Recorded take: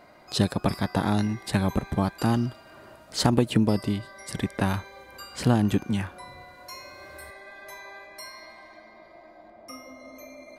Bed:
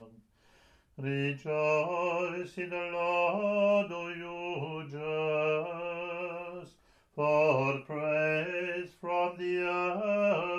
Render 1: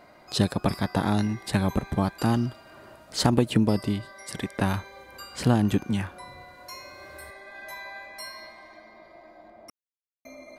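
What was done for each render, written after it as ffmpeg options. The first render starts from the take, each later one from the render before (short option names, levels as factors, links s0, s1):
-filter_complex "[0:a]asettb=1/sr,asplit=3[s0][s1][s2];[s0]atrim=end=4.124[s3];[s1]atrim=start=4.12:end=4.59,asetpts=PTS-STARTPTS,afade=t=in:d=0.004:c=qsin,afade=t=out:st=0.466:d=0.004:c=qsin,lowshelf=f=200:g=-8.5[s4];[s2]atrim=start=4.586[s5];[s3][s4]acrossfade=d=0.004:c1=hsin:c2=qsin[s6];[s6][s5]acrossfade=d=0.004:c1=qsin:c2=hsin,asettb=1/sr,asplit=3[s7][s8][s9];[s7]atrim=end=7.534[s10];[s8]atrim=start=7.53:end=8.49,asetpts=PTS-STARTPTS,afade=t=in:d=0.004:c=qsin,afade=t=out:st=0.956:d=0.004:c=qsin,asplit=2[s11][s12];[s12]adelay=14,volume=0.708[s13];[s11][s13]amix=inputs=2:normalize=0,atrim=end_sample=42336[s14];[s9]atrim=start=8.486[s15];[s10][s14]acrossfade=d=0.004:c1=hsin:c2=qsin[s16];[s16][s15]acrossfade=d=0.004:c1=qsin:c2=hsin,asplit=3[s17][s18][s19];[s17]atrim=end=9.7,asetpts=PTS-STARTPTS,afade=t=out:st=9.696:d=0.004:c=hsin[s20];[s18]atrim=start=9.7:end=10.25,asetpts=PTS-STARTPTS,volume=0[s21];[s19]atrim=start=10.25,asetpts=PTS-STARTPTS,afade=t=in:d=0.004:c=hsin[s22];[s20][s21][s22]concat=n=3:v=0:a=1"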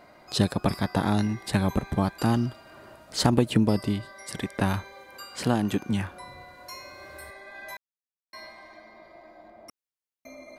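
-filter_complex "[0:a]asettb=1/sr,asplit=3[s0][s1][s2];[s0]atrim=end=4.934[s3];[s1]atrim=start=4.93:end=5.85,asetpts=PTS-STARTPTS,afade=t=in:d=0.004:c=qsin,afade=t=out:st=0.916:d=0.004:c=qsin,highpass=f=220:p=1[s4];[s2]atrim=start=5.846[s5];[s3][s4]acrossfade=d=0.004:c1=hsin:c2=qsin[s6];[s6][s5]acrossfade=d=0.004:c1=qsin:c2=hsin,asplit=3[s7][s8][s9];[s7]atrim=end=7.77,asetpts=PTS-STARTPTS,afade=t=out:st=7.766:d=0.004:c=hsin[s10];[s8]atrim=start=7.77:end=8.33,asetpts=PTS-STARTPTS,volume=0[s11];[s9]atrim=start=8.33,asetpts=PTS-STARTPTS,afade=t=in:d=0.004:c=hsin[s12];[s10][s11][s12]concat=n=3:v=0:a=1"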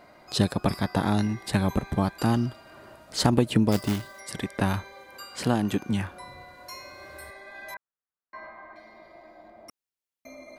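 -filter_complex "[0:a]asplit=3[s0][s1][s2];[s0]afade=t=out:st=3.71:d=0.02[s3];[s1]acrusher=bits=2:mode=log:mix=0:aa=0.000001,afade=t=in:st=3.71:d=0.02,afade=t=out:st=4.19:d=0.02[s4];[s2]afade=t=in:st=4.19:d=0.02[s5];[s3][s4][s5]amix=inputs=3:normalize=0,asettb=1/sr,asplit=3[s6][s7][s8];[s6]atrim=end=7.744[s9];[s7]atrim=start=7.74:end=8.76,asetpts=PTS-STARTPTS,afade=t=in:d=0.004:c=qsin,afade=t=out:st=1.016:d=0.004:c=qsin,lowpass=f=1400:t=q:w=2[s10];[s8]atrim=start=8.756[s11];[s9][s10]acrossfade=d=0.004:c1=hsin:c2=qsin[s12];[s12][s11]acrossfade=d=0.004:c1=qsin:c2=hsin"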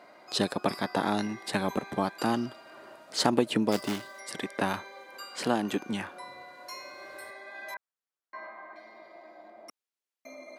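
-af "highpass=280,highshelf=f=11000:g=-8"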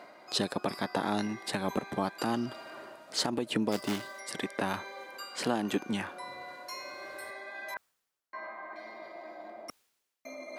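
-af "areverse,acompressor=mode=upward:threshold=0.0126:ratio=2.5,areverse,alimiter=limit=0.126:level=0:latency=1:release=194"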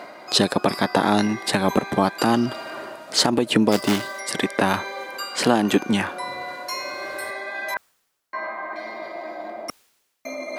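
-af "volume=3.98"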